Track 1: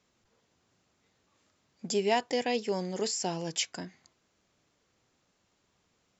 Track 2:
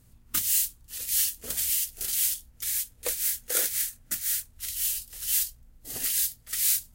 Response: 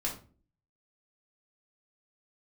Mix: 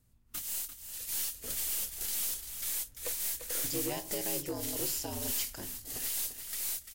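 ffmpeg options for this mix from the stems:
-filter_complex "[0:a]aeval=exprs='val(0)*sin(2*PI*73*n/s)':c=same,adelay=1800,volume=-3.5dB,asplit=2[a][b];[b]volume=-11dB[c];[1:a]dynaudnorm=f=300:g=7:m=11.5dB,aeval=exprs='(tanh(7.94*val(0)+0.4)-tanh(0.4))/7.94':c=same,volume=-9.5dB,asplit=2[d][e];[e]volume=-10.5dB[f];[2:a]atrim=start_sample=2205[g];[c][g]afir=irnorm=-1:irlink=0[h];[f]aecho=0:1:344:1[i];[a][d][h][i]amix=inputs=4:normalize=0,acrossover=split=460|3000[j][k][l];[k]acompressor=threshold=-39dB:ratio=6[m];[j][m][l]amix=inputs=3:normalize=0,asoftclip=type=tanh:threshold=-27.5dB"

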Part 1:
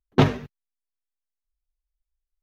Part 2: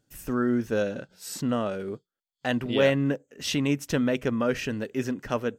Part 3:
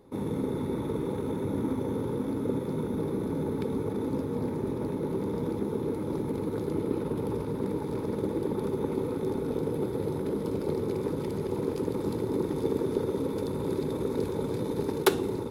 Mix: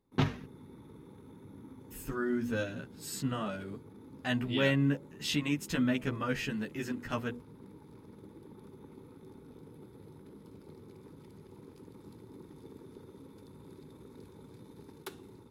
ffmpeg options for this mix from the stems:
-filter_complex "[0:a]volume=-9.5dB[a];[1:a]bandreject=f=5.8k:w=8.2,bandreject=f=80.3:t=h:w=4,bandreject=f=160.6:t=h:w=4,bandreject=f=240.9:t=h:w=4,bandreject=f=321.2:t=h:w=4,bandreject=f=401.5:t=h:w=4,bandreject=f=481.8:t=h:w=4,bandreject=f=562.1:t=h:w=4,bandreject=f=642.4:t=h:w=4,bandreject=f=722.7:t=h:w=4,bandreject=f=803:t=h:w=4,bandreject=f=883.3:t=h:w=4,asplit=2[b][c];[c]adelay=12,afreqshift=0.67[d];[b][d]amix=inputs=2:normalize=1,adelay=1800,volume=0dB[e];[2:a]volume=-18dB[f];[a][e][f]amix=inputs=3:normalize=0,equalizer=f=520:t=o:w=1.2:g=-8.5"

